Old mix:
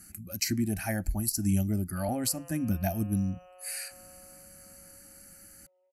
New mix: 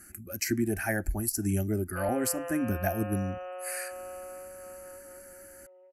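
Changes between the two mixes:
background +11.0 dB; master: add fifteen-band graphic EQ 160 Hz -9 dB, 400 Hz +11 dB, 1.6 kHz +8 dB, 4 kHz -9 dB

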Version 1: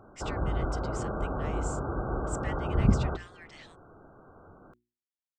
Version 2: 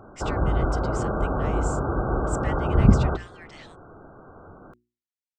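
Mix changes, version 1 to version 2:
speech +3.5 dB; background +7.0 dB

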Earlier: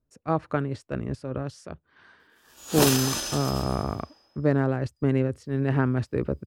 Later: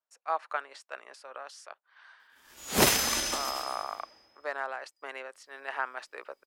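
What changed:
speech: add high-pass 750 Hz 24 dB/octave; background: add peaking EQ 2.1 kHz +13.5 dB 0.2 oct

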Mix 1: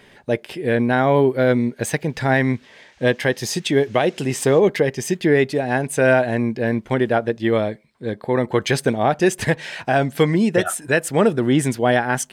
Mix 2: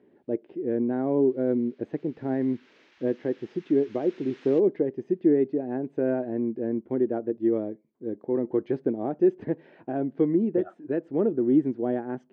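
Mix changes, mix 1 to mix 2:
speech: add band-pass filter 320 Hz, Q 3.1; master: add distance through air 200 m

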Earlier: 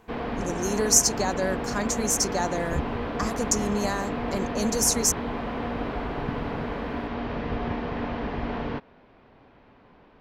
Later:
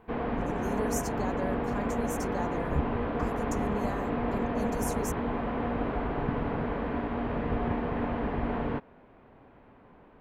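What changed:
speech -8.5 dB; master: add peaking EQ 5.4 kHz -14.5 dB 1.5 oct

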